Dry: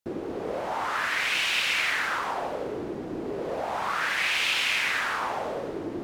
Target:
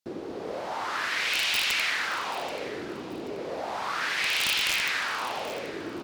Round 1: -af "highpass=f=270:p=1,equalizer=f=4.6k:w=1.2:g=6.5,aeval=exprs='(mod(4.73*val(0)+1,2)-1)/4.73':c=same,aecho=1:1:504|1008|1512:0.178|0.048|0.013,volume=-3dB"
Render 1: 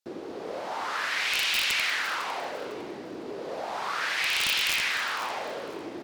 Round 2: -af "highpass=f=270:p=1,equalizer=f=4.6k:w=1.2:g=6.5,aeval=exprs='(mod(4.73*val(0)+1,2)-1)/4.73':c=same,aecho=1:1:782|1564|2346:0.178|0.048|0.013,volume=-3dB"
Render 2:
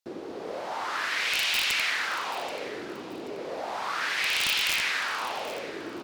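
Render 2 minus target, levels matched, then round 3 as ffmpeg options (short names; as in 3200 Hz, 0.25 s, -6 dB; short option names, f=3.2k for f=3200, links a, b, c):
125 Hz band -4.5 dB
-af "highpass=f=93:p=1,equalizer=f=4.6k:w=1.2:g=6.5,aeval=exprs='(mod(4.73*val(0)+1,2)-1)/4.73':c=same,aecho=1:1:782|1564|2346:0.178|0.048|0.013,volume=-3dB"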